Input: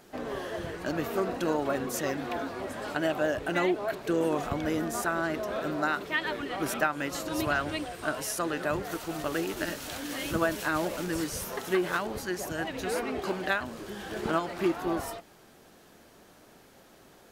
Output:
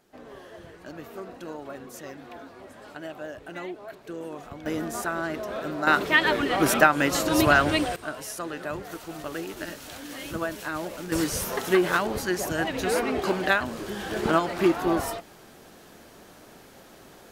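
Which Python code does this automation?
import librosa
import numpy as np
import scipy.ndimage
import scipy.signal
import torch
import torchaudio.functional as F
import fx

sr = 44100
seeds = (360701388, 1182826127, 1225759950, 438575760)

y = fx.gain(x, sr, db=fx.steps((0.0, -9.5), (4.66, 0.0), (5.87, 9.5), (7.96, -3.0), (11.12, 6.0)))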